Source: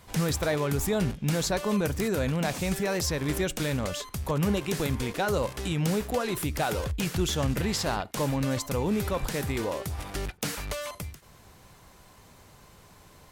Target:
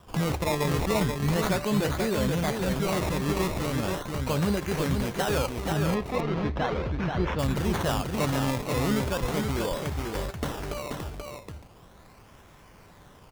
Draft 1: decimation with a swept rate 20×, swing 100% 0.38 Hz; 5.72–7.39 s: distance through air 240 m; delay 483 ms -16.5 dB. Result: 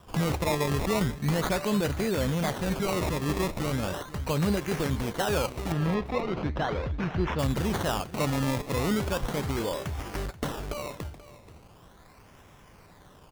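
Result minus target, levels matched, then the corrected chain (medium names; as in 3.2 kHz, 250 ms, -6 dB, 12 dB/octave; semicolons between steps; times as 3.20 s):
echo-to-direct -12 dB
decimation with a swept rate 20×, swing 100% 0.38 Hz; 5.72–7.39 s: distance through air 240 m; delay 483 ms -4.5 dB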